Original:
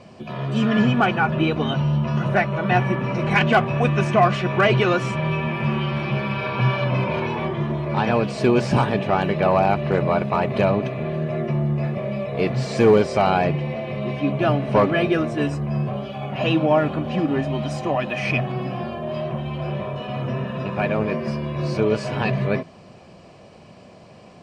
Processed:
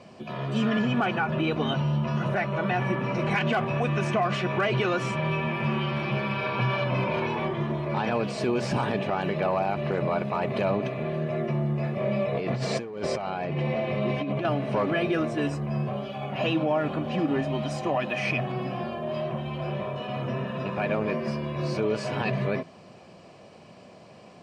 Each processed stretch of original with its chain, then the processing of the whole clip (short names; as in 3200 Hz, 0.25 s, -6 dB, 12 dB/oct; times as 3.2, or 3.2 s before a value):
12–14.45 high shelf 5600 Hz -5 dB + negative-ratio compressor -25 dBFS
whole clip: HPF 140 Hz 6 dB/oct; limiter -14 dBFS; gain -2.5 dB